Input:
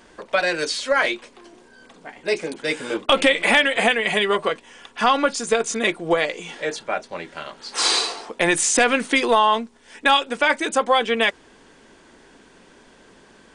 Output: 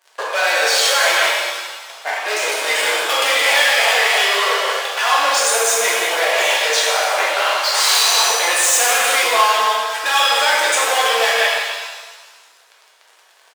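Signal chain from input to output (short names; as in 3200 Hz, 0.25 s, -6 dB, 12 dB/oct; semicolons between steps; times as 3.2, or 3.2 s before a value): on a send: echo 0.172 s -14 dB; on the sum: sample leveller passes 5; in parallel at -1 dB: negative-ratio compressor -15 dBFS, ratio -0.5; on the sum: HPF 560 Hz 24 dB/oct; shimmer reverb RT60 1.4 s, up +7 st, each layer -8 dB, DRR -5 dB; gain -13.5 dB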